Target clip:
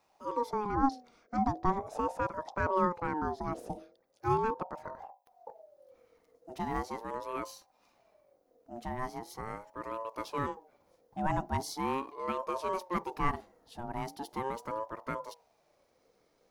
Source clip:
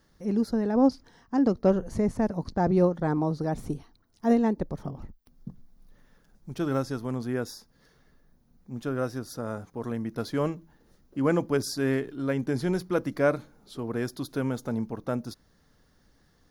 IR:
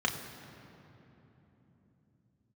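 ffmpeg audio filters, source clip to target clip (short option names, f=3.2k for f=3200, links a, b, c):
-af "bandreject=f=50:t=h:w=6,bandreject=f=100:t=h:w=6,bandreject=f=150:t=h:w=6,bandreject=f=200:t=h:w=6,bandreject=f=250:t=h:w=6,aeval=exprs='val(0)*sin(2*PI*630*n/s+630*0.25/0.4*sin(2*PI*0.4*n/s))':c=same,volume=-4dB"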